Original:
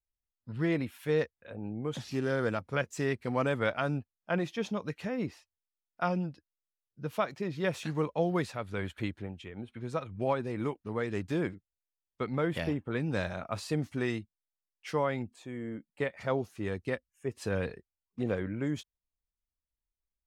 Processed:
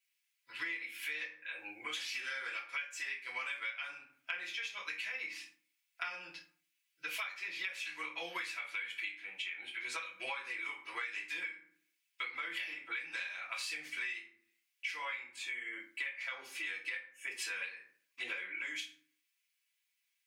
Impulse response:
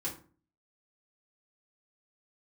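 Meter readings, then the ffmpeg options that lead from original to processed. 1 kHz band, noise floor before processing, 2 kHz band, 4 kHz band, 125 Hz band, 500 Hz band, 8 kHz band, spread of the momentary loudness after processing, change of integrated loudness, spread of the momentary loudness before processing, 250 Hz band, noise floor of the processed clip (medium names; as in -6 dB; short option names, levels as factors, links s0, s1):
-10.0 dB, under -85 dBFS, +2.5 dB, +3.5 dB, under -40 dB, -23.5 dB, +1.5 dB, 6 LU, -6.0 dB, 10 LU, -27.0 dB, -82 dBFS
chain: -filter_complex "[0:a]highpass=f=2300:t=q:w=3.5[s0];[1:a]atrim=start_sample=2205[s1];[s0][s1]afir=irnorm=-1:irlink=0,acompressor=threshold=0.00355:ratio=12,volume=3.76"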